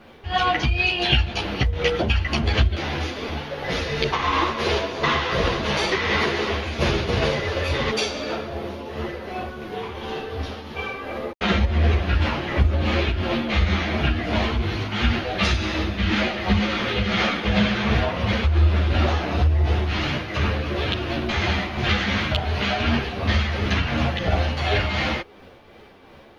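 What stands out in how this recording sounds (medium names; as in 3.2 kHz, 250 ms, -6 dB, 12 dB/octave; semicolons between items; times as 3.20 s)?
a quantiser's noise floor 12-bit, dither none; tremolo triangle 2.8 Hz, depth 45%; a shimmering, thickened sound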